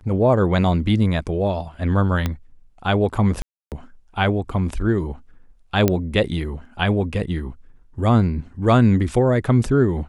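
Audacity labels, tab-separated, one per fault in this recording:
2.260000	2.260000	pop -9 dBFS
3.420000	3.720000	gap 0.298 s
5.880000	5.880000	pop -4 dBFS

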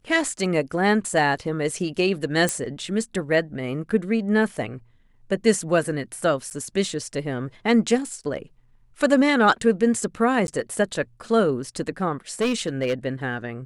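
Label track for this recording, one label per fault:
2.490000	2.490000	pop -10 dBFS
6.500000	6.510000	gap 9.1 ms
10.470000	10.480000	gap 11 ms
12.410000	12.940000	clipped -18 dBFS

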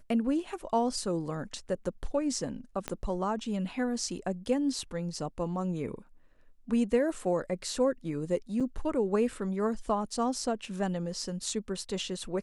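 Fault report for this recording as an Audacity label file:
2.880000	2.880000	pop -17 dBFS
8.600000	8.610000	gap 6.1 ms

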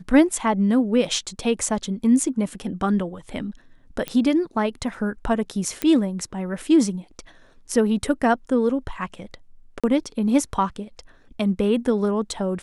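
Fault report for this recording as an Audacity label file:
4.080000	4.080000	pop -12 dBFS
5.820000	5.820000	pop -8 dBFS
9.800000	9.840000	gap 36 ms

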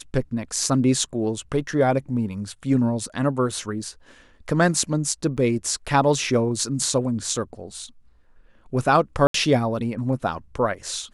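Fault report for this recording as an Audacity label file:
5.370000	5.380000	gap 7.6 ms
9.270000	9.340000	gap 73 ms

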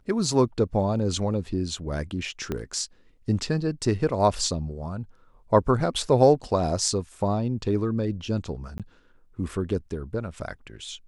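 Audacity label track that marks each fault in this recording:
2.520000	2.520000	pop -16 dBFS
8.780000	8.800000	gap 17 ms

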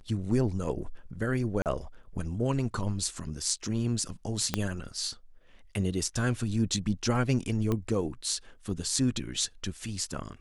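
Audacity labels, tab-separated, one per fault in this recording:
1.620000	1.660000	gap 38 ms
4.540000	4.540000	pop -11 dBFS
7.720000	7.720000	pop -17 dBFS

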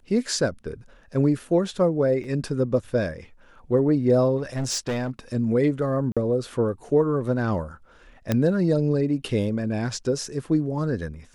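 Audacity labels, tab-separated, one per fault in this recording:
2.240000	2.240000	gap 3 ms
4.370000	5.100000	clipped -22.5 dBFS
6.120000	6.170000	gap 46 ms
8.320000	8.320000	pop -9 dBFS

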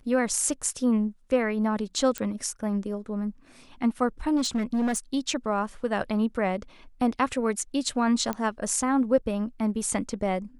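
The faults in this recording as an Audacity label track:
2.180000	2.180000	pop -14 dBFS
4.360000	4.980000	clipped -22 dBFS
8.330000	8.330000	pop -15 dBFS

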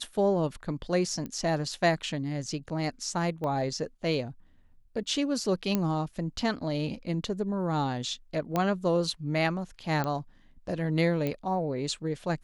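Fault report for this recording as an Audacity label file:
1.260000	1.260000	pop -24 dBFS
3.440000	3.440000	pop -23 dBFS
5.750000	5.750000	pop -13 dBFS
8.560000	8.560000	pop -14 dBFS
10.040000	10.040000	pop -18 dBFS
11.270000	11.270000	pop -18 dBFS

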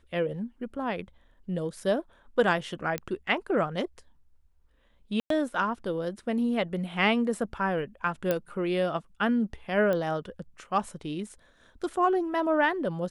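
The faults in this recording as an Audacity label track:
2.980000	2.980000	pop -16 dBFS
5.200000	5.300000	gap 0.103 s
8.310000	8.310000	pop -13 dBFS
9.930000	9.930000	pop -18 dBFS

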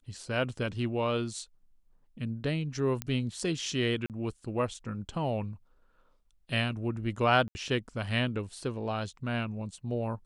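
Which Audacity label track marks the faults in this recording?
3.020000	3.020000	pop -16 dBFS
4.060000	4.100000	gap 38 ms
7.480000	7.550000	gap 70 ms

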